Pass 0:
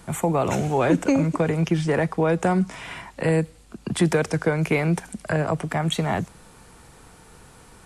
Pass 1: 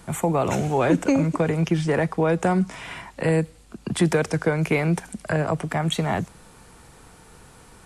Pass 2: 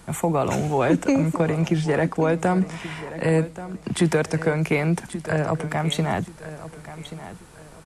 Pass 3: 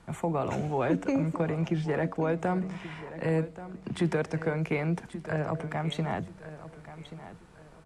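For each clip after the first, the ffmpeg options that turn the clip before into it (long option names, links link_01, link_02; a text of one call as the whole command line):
ffmpeg -i in.wav -af anull out.wav
ffmpeg -i in.wav -af "aecho=1:1:1131|2262|3393:0.2|0.0599|0.018" out.wav
ffmpeg -i in.wav -af "aemphasis=mode=reproduction:type=50fm,bandreject=frequency=94.23:width_type=h:width=4,bandreject=frequency=188.46:width_type=h:width=4,bandreject=frequency=282.69:width_type=h:width=4,bandreject=frequency=376.92:width_type=h:width=4,bandreject=frequency=471.15:width_type=h:width=4,bandreject=frequency=565.38:width_type=h:width=4,bandreject=frequency=659.61:width_type=h:width=4,volume=-7.5dB" out.wav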